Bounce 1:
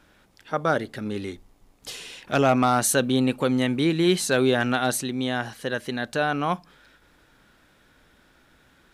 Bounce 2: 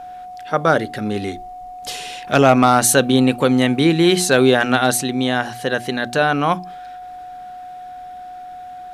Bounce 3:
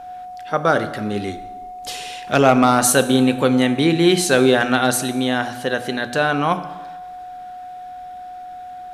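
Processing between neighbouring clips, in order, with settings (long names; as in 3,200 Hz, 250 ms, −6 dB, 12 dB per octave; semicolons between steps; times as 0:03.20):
steady tone 730 Hz −39 dBFS; mains-hum notches 60/120/180/240/300/360 Hz; level +7.5 dB
dense smooth reverb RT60 1.2 s, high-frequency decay 0.75×, DRR 10.5 dB; level −1.5 dB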